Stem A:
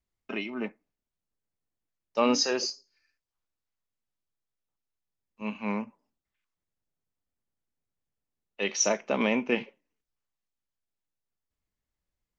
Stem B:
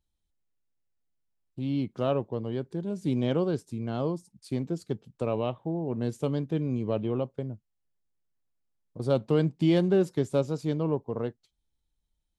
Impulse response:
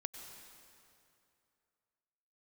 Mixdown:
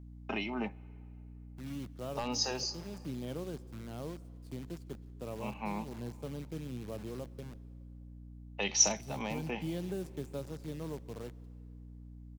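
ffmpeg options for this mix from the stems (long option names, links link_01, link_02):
-filter_complex "[0:a]equalizer=frequency=810:width_type=o:width=0.55:gain=13.5,asoftclip=type=hard:threshold=-11dB,volume=1.5dB,asplit=2[link_01][link_02];[link_02]volume=-22dB[link_03];[1:a]acrusher=bits=7:dc=4:mix=0:aa=0.000001,volume=-14.5dB,asplit=3[link_04][link_05][link_06];[link_05]volume=-11dB[link_07];[link_06]apad=whole_len=550459[link_08];[link_01][link_08]sidechaincompress=threshold=-45dB:ratio=8:attack=6.9:release=696[link_09];[2:a]atrim=start_sample=2205[link_10];[link_03][link_07]amix=inputs=2:normalize=0[link_11];[link_11][link_10]afir=irnorm=-1:irlink=0[link_12];[link_09][link_04][link_12]amix=inputs=3:normalize=0,acrossover=split=190|3000[link_13][link_14][link_15];[link_14]acompressor=threshold=-36dB:ratio=6[link_16];[link_13][link_16][link_15]amix=inputs=3:normalize=0,aeval=exprs='val(0)+0.00398*(sin(2*PI*60*n/s)+sin(2*PI*2*60*n/s)/2+sin(2*PI*3*60*n/s)/3+sin(2*PI*4*60*n/s)/4+sin(2*PI*5*60*n/s)/5)':channel_layout=same"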